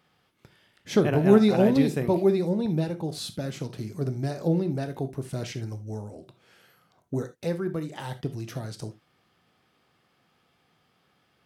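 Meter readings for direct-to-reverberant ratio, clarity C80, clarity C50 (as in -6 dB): 10.0 dB, 22.5 dB, 14.0 dB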